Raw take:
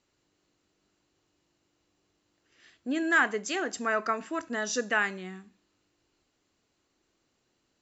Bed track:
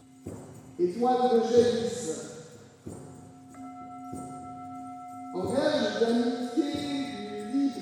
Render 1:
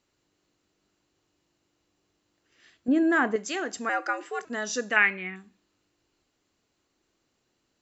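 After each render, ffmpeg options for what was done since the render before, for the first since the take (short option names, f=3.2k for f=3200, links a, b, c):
-filter_complex "[0:a]asettb=1/sr,asplit=3[a][b][c];[a]atrim=end=2.884[d];[b]atrim=start=2.88:end=3.36,asetpts=PTS-STARTPTS,afade=t=in:d=0.004:c=qsin,afade=t=out:st=0.476:d=0.004:c=qsin,tiltshelf=f=1.2k:g=9[e];[c]atrim=start=3.356[f];[d][e]acrossfade=d=0.004:c1=hsin:c2=qsin[g];[g][f]acrossfade=d=0.004:c1=qsin:c2=hsin,asettb=1/sr,asplit=3[h][i][j];[h]atrim=end=3.894[k];[i]atrim=start=3.89:end=4.45,asetpts=PTS-STARTPTS,afade=t=in:d=0.004:c=qsin,afade=t=out:st=0.556:d=0.004:c=qsin,afreqshift=110[l];[j]atrim=start=4.446[m];[k][l]acrossfade=d=0.004:c1=hsin:c2=qsin[n];[n][m]acrossfade=d=0.004:c1=qsin:c2=hsin,asettb=1/sr,asplit=3[o][p][q];[o]atrim=end=4.964[r];[p]atrim=start=4.96:end=5.36,asetpts=PTS-STARTPTS,afade=t=in:d=0.004:c=qsin,afade=t=out:st=0.396:d=0.004:c=qsin,lowpass=f=2.3k:t=q:w=7.4[s];[q]atrim=start=5.356[t];[r][s]acrossfade=d=0.004:c1=hsin:c2=qsin[u];[u][t]acrossfade=d=0.004:c1=qsin:c2=hsin"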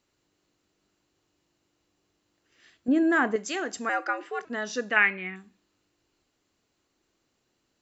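-filter_complex "[0:a]asettb=1/sr,asplit=3[a][b][c];[a]atrim=end=4.044[d];[b]atrim=start=4.04:end=5.23,asetpts=PTS-STARTPTS,afade=t=in:d=0.004:c=qsin,afade=t=out:st=1.186:d=0.004:c=qsin,lowpass=4.5k[e];[c]atrim=start=5.226[f];[d][e]acrossfade=d=0.004:c1=hsin:c2=qsin[g];[g][f]acrossfade=d=0.004:c1=qsin:c2=hsin"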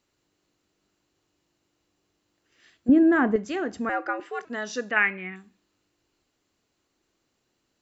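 -filter_complex "[0:a]asettb=1/sr,asplit=3[a][b][c];[a]atrim=end=2.894[d];[b]atrim=start=2.89:end=4.2,asetpts=PTS-STARTPTS,afade=t=in:d=0.004:c=qsin,afade=t=out:st=1.306:d=0.004:c=qsin,aemphasis=mode=reproduction:type=riaa[e];[c]atrim=start=4.196[f];[d][e]acrossfade=d=0.004:c1=hsin:c2=qsin[g];[g][f]acrossfade=d=0.004:c1=qsin:c2=hsin,asettb=1/sr,asplit=3[h][i][j];[h]atrim=end=4.914[k];[i]atrim=start=4.91:end=5.32,asetpts=PTS-STARTPTS,afade=t=in:d=0.004:c=qsin,afade=t=out:st=0.406:d=0.004:c=qsin,bass=f=250:g=2,treble=f=4k:g=-14[l];[j]atrim=start=5.316[m];[k][l]acrossfade=d=0.004:c1=hsin:c2=qsin[n];[n][m]acrossfade=d=0.004:c1=qsin:c2=hsin"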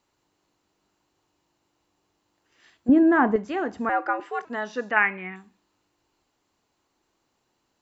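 -filter_complex "[0:a]acrossover=split=3300[a][b];[b]acompressor=threshold=-54dB:ratio=4:attack=1:release=60[c];[a][c]amix=inputs=2:normalize=0,equalizer=f=910:t=o:w=0.7:g=8.5"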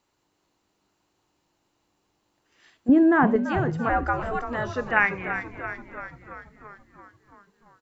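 -filter_complex "[0:a]asplit=9[a][b][c][d][e][f][g][h][i];[b]adelay=337,afreqshift=-84,volume=-9.5dB[j];[c]adelay=674,afreqshift=-168,volume=-13.4dB[k];[d]adelay=1011,afreqshift=-252,volume=-17.3dB[l];[e]adelay=1348,afreqshift=-336,volume=-21.1dB[m];[f]adelay=1685,afreqshift=-420,volume=-25dB[n];[g]adelay=2022,afreqshift=-504,volume=-28.9dB[o];[h]adelay=2359,afreqshift=-588,volume=-32.8dB[p];[i]adelay=2696,afreqshift=-672,volume=-36.6dB[q];[a][j][k][l][m][n][o][p][q]amix=inputs=9:normalize=0"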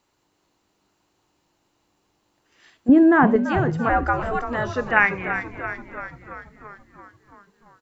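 -af "volume=3.5dB"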